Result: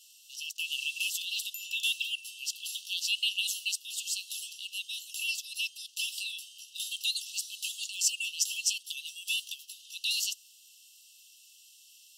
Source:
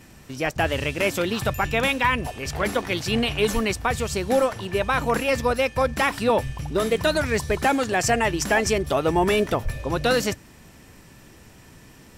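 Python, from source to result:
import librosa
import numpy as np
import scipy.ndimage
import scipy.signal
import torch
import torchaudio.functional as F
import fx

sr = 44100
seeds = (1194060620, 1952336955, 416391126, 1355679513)

y = fx.brickwall_highpass(x, sr, low_hz=2600.0)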